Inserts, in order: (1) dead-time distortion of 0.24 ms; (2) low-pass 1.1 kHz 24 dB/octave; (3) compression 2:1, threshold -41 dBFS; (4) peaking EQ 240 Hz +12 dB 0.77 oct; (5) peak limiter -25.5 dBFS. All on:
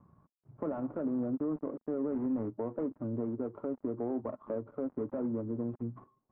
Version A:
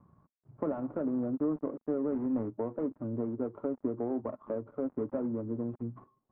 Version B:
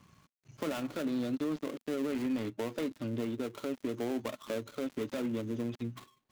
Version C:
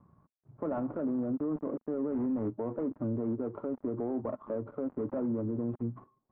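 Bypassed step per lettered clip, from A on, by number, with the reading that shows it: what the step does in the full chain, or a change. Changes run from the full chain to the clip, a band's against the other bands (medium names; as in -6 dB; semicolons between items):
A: 5, crest factor change +3.5 dB; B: 2, 1 kHz band +2.0 dB; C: 3, mean gain reduction 7.5 dB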